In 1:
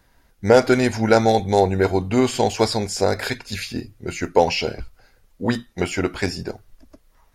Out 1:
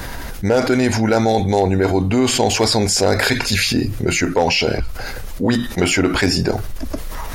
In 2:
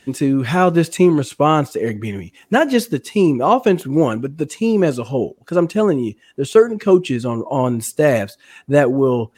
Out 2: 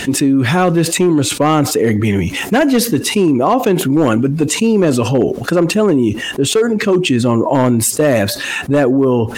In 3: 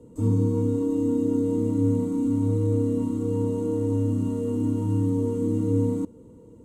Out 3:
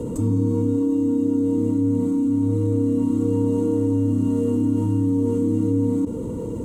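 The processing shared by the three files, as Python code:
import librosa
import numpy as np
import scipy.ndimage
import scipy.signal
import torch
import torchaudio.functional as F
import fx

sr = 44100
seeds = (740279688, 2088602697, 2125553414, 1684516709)

y = fx.dynamic_eq(x, sr, hz=280.0, q=5.2, threshold_db=-35.0, ratio=4.0, max_db=5)
y = fx.rider(y, sr, range_db=3, speed_s=0.5)
y = np.clip(y, -10.0 ** (-7.0 / 20.0), 10.0 ** (-7.0 / 20.0))
y = fx.env_flatten(y, sr, amount_pct=70)
y = y * 10.0 ** (-1.0 / 20.0)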